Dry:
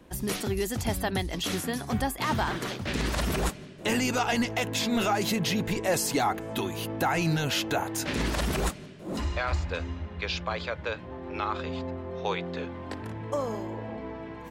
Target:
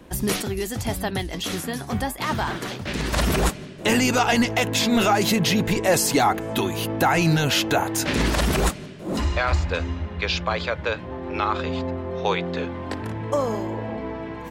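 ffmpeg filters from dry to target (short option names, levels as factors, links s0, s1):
-filter_complex "[0:a]asettb=1/sr,asplit=3[s0][s1][s2];[s0]atrim=end=0.424[s3];[s1]atrim=start=0.42:end=3.13,asetpts=PTS-STARTPTS,afade=t=in:d=0.004:c=qsin,afade=t=out:st=2.706:d=0.004:c=qsin,flanger=delay=4.7:depth=6.1:regen=72:speed=1.6:shape=triangular[s4];[s2]atrim=start=3.126[s5];[s3][s4]acrossfade=d=0.004:c1=hsin:c2=qsin[s6];[s6][s5]acrossfade=d=0.004:c1=qsin:c2=hsin,volume=2.24"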